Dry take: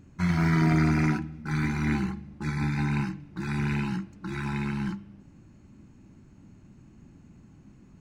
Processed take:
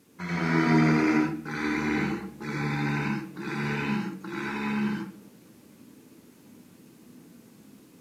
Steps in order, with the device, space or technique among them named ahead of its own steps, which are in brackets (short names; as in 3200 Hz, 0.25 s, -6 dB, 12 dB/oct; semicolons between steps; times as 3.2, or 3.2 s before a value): HPF 65 Hz; filmed off a television (BPF 240–6700 Hz; bell 450 Hz +10.5 dB 0.32 oct; reverb RT60 0.35 s, pre-delay 75 ms, DRR -2.5 dB; white noise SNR 33 dB; AGC gain up to 3.5 dB; gain -4 dB; AAC 64 kbps 32000 Hz)